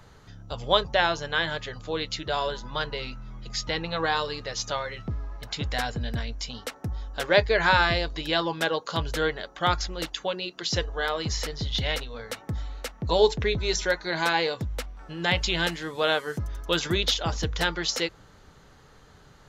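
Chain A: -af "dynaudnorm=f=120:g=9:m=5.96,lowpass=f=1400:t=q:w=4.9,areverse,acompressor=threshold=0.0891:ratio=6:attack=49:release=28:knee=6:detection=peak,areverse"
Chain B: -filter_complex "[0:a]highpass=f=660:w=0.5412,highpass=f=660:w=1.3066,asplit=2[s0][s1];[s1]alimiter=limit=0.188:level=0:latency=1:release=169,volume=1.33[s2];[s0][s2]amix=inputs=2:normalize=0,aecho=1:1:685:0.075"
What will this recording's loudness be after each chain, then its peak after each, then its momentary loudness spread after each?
-20.0 LUFS, -22.0 LUFS; -3.5 dBFS, -2.5 dBFS; 9 LU, 14 LU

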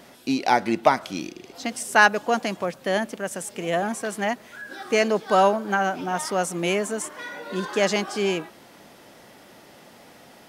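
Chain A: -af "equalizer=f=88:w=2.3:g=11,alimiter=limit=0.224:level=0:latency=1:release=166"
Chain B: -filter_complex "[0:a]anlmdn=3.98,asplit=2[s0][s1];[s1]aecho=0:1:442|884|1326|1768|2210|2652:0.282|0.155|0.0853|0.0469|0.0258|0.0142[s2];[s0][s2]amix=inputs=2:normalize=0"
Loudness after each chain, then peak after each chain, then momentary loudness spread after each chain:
-27.0 LUFS, -23.5 LUFS; -13.0 dBFS, -4.0 dBFS; 8 LU, 15 LU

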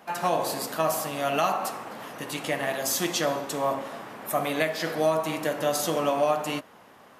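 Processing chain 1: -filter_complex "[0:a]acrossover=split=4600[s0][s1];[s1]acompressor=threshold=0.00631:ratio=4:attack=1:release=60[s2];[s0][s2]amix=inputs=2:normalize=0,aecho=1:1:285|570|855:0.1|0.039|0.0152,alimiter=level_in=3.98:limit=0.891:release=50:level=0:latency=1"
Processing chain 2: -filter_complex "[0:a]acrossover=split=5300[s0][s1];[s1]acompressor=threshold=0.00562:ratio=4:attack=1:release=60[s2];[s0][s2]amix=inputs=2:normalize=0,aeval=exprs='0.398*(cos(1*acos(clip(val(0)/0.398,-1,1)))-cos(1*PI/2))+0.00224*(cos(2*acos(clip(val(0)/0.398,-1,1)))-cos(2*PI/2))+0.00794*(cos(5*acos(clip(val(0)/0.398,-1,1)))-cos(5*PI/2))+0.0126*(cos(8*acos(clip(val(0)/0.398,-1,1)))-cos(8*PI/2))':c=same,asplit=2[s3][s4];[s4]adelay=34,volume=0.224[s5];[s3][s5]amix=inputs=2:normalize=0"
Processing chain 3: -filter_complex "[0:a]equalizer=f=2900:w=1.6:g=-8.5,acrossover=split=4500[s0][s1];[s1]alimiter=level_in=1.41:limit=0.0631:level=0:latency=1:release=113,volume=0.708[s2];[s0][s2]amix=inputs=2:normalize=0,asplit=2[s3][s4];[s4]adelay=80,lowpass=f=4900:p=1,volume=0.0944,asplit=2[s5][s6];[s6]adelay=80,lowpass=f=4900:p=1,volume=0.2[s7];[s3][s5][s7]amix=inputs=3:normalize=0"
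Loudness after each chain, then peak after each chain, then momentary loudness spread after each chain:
-16.0 LUFS, -27.0 LUFS, -28.0 LUFS; -1.0 dBFS, -8.0 dBFS, -10.5 dBFS; 10 LU, 9 LU, 10 LU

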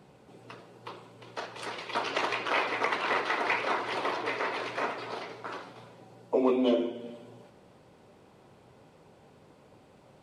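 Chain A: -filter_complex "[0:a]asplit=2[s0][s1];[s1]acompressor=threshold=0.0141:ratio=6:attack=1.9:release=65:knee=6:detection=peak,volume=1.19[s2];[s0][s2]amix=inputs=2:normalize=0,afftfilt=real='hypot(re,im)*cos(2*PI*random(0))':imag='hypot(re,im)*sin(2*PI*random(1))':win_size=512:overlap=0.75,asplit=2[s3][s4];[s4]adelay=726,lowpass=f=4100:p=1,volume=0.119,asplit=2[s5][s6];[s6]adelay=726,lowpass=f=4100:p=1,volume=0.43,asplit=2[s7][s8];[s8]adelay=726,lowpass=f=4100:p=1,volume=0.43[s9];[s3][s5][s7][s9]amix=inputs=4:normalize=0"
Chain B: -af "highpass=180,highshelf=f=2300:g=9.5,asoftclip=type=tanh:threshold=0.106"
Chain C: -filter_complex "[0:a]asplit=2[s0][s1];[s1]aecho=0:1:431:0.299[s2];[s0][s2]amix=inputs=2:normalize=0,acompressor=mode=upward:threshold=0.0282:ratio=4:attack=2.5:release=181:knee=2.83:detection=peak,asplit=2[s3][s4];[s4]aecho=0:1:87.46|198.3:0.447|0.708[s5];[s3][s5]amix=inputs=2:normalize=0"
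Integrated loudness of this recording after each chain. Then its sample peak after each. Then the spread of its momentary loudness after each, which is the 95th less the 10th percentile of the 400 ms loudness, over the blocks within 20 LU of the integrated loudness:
-34.5 LUFS, -29.5 LUFS, -30.0 LUFS; -18.5 dBFS, -19.5 dBFS, -11.5 dBFS; 19 LU, 19 LU, 14 LU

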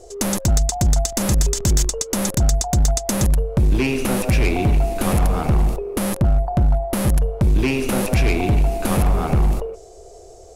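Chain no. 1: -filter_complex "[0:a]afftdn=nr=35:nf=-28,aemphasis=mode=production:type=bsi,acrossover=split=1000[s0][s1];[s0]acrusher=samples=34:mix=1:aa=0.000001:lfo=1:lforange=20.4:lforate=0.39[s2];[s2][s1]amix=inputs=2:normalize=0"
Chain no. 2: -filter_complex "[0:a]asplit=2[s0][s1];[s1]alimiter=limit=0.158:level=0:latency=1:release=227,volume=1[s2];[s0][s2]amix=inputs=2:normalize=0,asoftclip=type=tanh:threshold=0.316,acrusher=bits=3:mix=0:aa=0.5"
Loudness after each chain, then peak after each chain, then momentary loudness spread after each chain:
-21.5 LUFS, -17.5 LUFS; -1.0 dBFS, -11.0 dBFS; 10 LU, 2 LU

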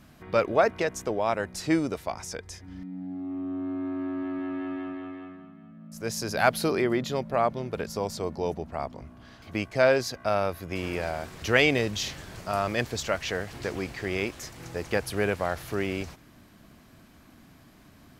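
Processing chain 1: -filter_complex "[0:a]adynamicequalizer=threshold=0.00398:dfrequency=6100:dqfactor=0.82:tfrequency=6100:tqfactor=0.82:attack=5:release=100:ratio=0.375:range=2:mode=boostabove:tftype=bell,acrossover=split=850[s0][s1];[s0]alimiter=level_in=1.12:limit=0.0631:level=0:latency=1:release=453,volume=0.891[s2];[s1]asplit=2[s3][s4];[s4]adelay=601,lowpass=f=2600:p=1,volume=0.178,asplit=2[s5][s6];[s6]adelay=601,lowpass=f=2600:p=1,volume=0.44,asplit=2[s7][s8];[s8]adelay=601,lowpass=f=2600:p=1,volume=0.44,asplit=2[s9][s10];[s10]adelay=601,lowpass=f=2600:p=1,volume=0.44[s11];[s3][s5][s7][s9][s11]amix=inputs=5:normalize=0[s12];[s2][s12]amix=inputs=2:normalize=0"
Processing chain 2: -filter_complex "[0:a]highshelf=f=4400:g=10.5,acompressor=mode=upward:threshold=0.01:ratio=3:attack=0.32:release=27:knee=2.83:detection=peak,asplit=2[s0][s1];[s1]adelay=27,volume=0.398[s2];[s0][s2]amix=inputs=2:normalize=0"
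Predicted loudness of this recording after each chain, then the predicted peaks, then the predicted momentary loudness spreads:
-31.0 LUFS, -27.0 LUFS; -7.0 dBFS, -4.5 dBFS; 14 LU, 24 LU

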